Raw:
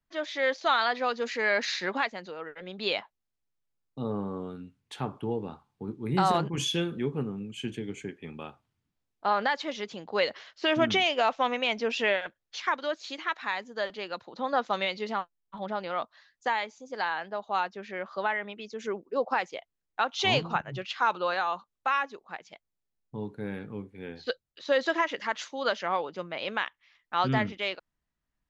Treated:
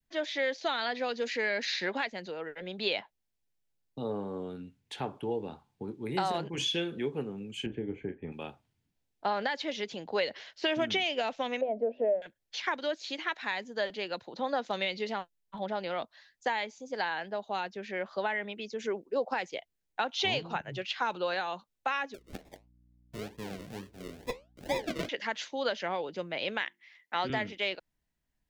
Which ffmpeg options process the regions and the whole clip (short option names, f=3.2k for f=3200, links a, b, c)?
-filter_complex "[0:a]asettb=1/sr,asplit=3[a][b][c];[a]atrim=end=7.664[d];[b]atrim=start=7.66:end=8.32,asetpts=PTS-STARTPTS,afade=t=in:d=0.004:c=qsin,afade=t=out:st=0.656:d=0.004:c=qsin,lowpass=1.5k,aemphasis=mode=reproduction:type=bsi,asplit=2[e][f];[f]adelay=33,volume=-10.5dB[g];[e][g]amix=inputs=2:normalize=0,atrim=end_sample=29106[h];[c]atrim=start=8.316[i];[d][h]acrossfade=d=0.004:c1=hsin:c2=qsin[j];[j][i]acrossfade=d=0.004:c1=qsin:c2=hsin,asettb=1/sr,asplit=3[k][l][m];[k]atrim=end=11.614[n];[l]atrim=start=11.61:end=12.22,asetpts=PTS-STARTPTS,afade=t=in:d=0.004:c=qsin,afade=t=out:st=0.606:d=0.004:c=qsin,lowpass=f=620:t=q:w=6.4,aemphasis=mode=reproduction:type=75kf,bandreject=f=50:t=h:w=6,bandreject=f=100:t=h:w=6,bandreject=f=150:t=h:w=6,bandreject=f=200:t=h:w=6,bandreject=f=250:t=h:w=6,bandreject=f=300:t=h:w=6,bandreject=f=350:t=h:w=6[o];[m]atrim=start=12.216[p];[n][o]acrossfade=d=0.004:c1=hsin:c2=qsin[q];[q][p]acrossfade=d=0.004:c1=qsin:c2=hsin,asettb=1/sr,asplit=3[r][s][t];[r]atrim=end=22.144[u];[s]atrim=start=22.14:end=25.09,asetpts=PTS-STARTPTS,afade=t=in:d=0.004:c=qsin,afade=t=out:st=2.946:d=0.004:c=qsin,acrusher=samples=42:mix=1:aa=0.000001:lfo=1:lforange=25.2:lforate=2.2,flanger=delay=4.8:depth=9.2:regen=-74:speed=1.6:shape=triangular,aeval=exprs='val(0)+0.000562*(sin(2*PI*60*n/s)+sin(2*PI*2*60*n/s)/2+sin(2*PI*3*60*n/s)/3+sin(2*PI*4*60*n/s)/4+sin(2*PI*5*60*n/s)/5)':c=same[v];[t]atrim=start=25.086[w];[u][v]acrossfade=d=0.004:c1=hsin:c2=qsin[x];[x][w]acrossfade=d=0.004:c1=qsin:c2=hsin,asettb=1/sr,asplit=3[y][z][aa];[y]atrim=end=26.604[ab];[z]atrim=start=26.6:end=27.3,asetpts=PTS-STARTPTS,afade=t=in:d=0.004:c=qsin,afade=t=out:st=0.696:d=0.004:c=qsin,highpass=200,equalizer=f=2k:t=o:w=0.23:g=9.5,bandreject=f=50:t=h:w=6,bandreject=f=100:t=h:w=6,bandreject=f=150:t=h:w=6,bandreject=f=200:t=h:w=6,bandreject=f=250:t=h:w=6,bandreject=f=300:t=h:w=6,bandreject=f=350:t=h:w=6[ac];[aa]atrim=start=27.296[ad];[ab][ac]acrossfade=d=0.004:c1=hsin:c2=qsin[ae];[ae][ad]acrossfade=d=0.004:c1=qsin:c2=hsin,equalizer=f=1.2k:w=3.2:g=-8.5,acrossover=split=340|5600[af][ag][ah];[af]acompressor=threshold=-44dB:ratio=4[ai];[ag]acompressor=threshold=-29dB:ratio=4[aj];[ah]acompressor=threshold=-57dB:ratio=4[ak];[ai][aj][ak]amix=inputs=3:normalize=0,adynamicequalizer=threshold=0.00631:dfrequency=930:dqfactor=1.1:tfrequency=930:tqfactor=1.1:attack=5:release=100:ratio=0.375:range=3:mode=cutabove:tftype=bell,volume=2dB"